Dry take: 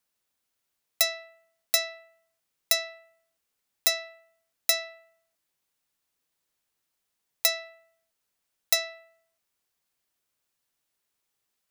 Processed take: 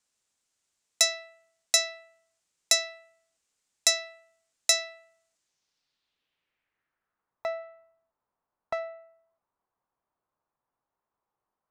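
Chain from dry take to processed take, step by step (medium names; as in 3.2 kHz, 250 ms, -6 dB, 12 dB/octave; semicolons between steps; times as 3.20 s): 7.61–8.78 s: formants flattened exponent 0.6; low-pass sweep 7.6 kHz -> 1 kHz, 5.34–7.49 s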